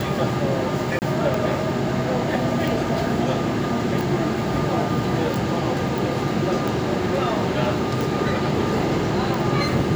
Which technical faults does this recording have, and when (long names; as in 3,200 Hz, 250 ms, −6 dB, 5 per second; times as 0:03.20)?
scratch tick 45 rpm
0:00.99–0:01.02: drop-out 29 ms